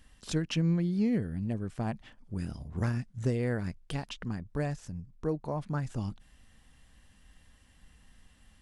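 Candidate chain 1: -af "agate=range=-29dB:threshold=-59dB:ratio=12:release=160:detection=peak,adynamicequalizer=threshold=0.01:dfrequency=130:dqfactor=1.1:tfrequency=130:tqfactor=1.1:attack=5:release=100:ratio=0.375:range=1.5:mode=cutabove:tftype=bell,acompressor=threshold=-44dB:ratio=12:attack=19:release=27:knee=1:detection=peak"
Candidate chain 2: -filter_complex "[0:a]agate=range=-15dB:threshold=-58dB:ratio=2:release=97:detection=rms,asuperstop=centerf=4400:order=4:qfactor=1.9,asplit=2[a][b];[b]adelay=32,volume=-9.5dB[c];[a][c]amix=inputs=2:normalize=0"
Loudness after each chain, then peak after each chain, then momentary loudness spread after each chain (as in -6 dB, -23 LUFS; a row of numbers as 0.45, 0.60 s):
-44.5, -33.0 LUFS; -20.5, -16.5 dBFS; 20, 11 LU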